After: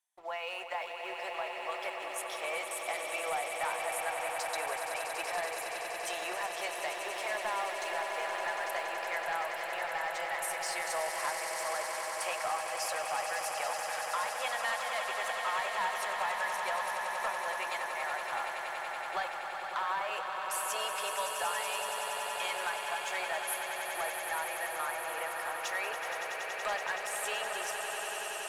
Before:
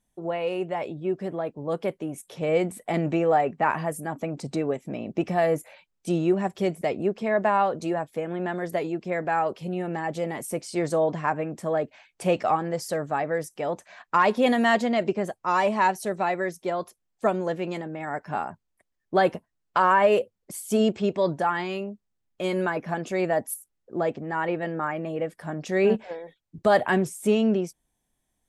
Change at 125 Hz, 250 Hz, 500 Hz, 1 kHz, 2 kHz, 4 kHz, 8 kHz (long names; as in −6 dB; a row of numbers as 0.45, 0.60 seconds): below −30 dB, −29.0 dB, −13.5 dB, −7.0 dB, −2.0 dB, +1.5 dB, +3.5 dB